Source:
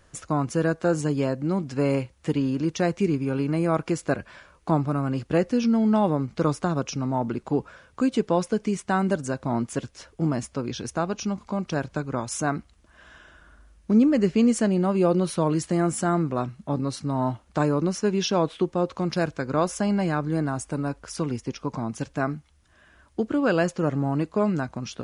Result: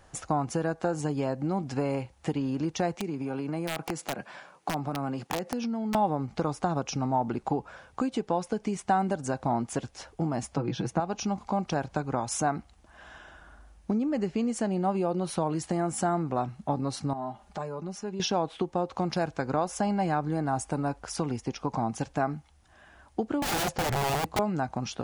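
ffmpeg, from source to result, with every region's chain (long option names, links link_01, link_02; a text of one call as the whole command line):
ffmpeg -i in.wav -filter_complex "[0:a]asettb=1/sr,asplit=3[link_01][link_02][link_03];[link_01]atrim=end=2.964[link_04];[link_02]atrim=start=2.96:end=5.95,asetpts=PTS-STARTPTS,afade=type=in:duration=0.004:curve=qsin,afade=type=out:start_time=2.986:duration=0.004:curve=qsin,highpass=frequency=140:width=0.5412,highpass=frequency=140:width=1.3066,acompressor=threshold=-29dB:ratio=5:attack=3.2:release=140:knee=1:detection=peak,aeval=exprs='(mod(15*val(0)+1,2)-1)/15':channel_layout=same[link_05];[link_03]atrim=start=5.946[link_06];[link_04][link_05]acrossfade=duration=0.004:curve1=hsin:curve2=qsin[link_07];[link_07][link_06]acrossfade=duration=0.004:curve1=qsin:curve2=hsin,asettb=1/sr,asplit=3[link_08][link_09][link_10];[link_08]atrim=end=10.574[link_11];[link_09]atrim=start=10.57:end=11,asetpts=PTS-STARTPTS,afade=type=in:duration=0.004:curve=qsin,afade=type=out:start_time=0.426:duration=0.004:curve=qsin,highpass=160,bass=frequency=250:gain=12,treble=frequency=4000:gain=-8,aecho=1:1:6.1:0.63,atrim=end_sample=18963[link_12];[link_10]atrim=start=10.996[link_13];[link_11][link_12]acrossfade=duration=0.004:curve1=hsin:curve2=qsin[link_14];[link_14][link_13]acrossfade=duration=0.004:curve1=qsin:curve2=hsin,asettb=1/sr,asplit=3[link_15][link_16][link_17];[link_15]atrim=end=17.134[link_18];[link_16]atrim=start=17.13:end=18.2,asetpts=PTS-STARTPTS,afade=type=in:duration=0.004:curve=qsin,afade=type=out:start_time=1.066:duration=0.004:curve=qsin,aecho=1:1:4.9:0.8,atrim=end_sample=47187,acompressor=threshold=-47dB:ratio=2:attack=3.2:release=140:knee=1:detection=peak[link_19];[link_17]atrim=start=18.196[link_20];[link_18][link_19]acrossfade=duration=0.004:curve1=hsin:curve2=qsin[link_21];[link_21][link_20]acrossfade=duration=0.004:curve1=qsin:curve2=hsin,asettb=1/sr,asplit=3[link_22][link_23][link_24];[link_22]atrim=end=23.424[link_25];[link_23]atrim=start=23.42:end=24.39,asetpts=PTS-STARTPTS,afade=type=in:duration=0.004:curve=qsin,afade=type=out:start_time=0.966:duration=0.004:curve=qsin,aeval=exprs='(mod(15.8*val(0)+1,2)-1)/15.8':channel_layout=same,equalizer=frequency=100:width=0.44:gain=8[link_26];[link_24]atrim=start=24.386[link_27];[link_25][link_26]acrossfade=duration=0.004:curve1=hsin:curve2=qsin[link_28];[link_28][link_27]acrossfade=duration=0.004:curve1=qsin:curve2=hsin,acompressor=threshold=-26dB:ratio=6,equalizer=frequency=790:width_type=o:width=0.4:gain=11.5" out.wav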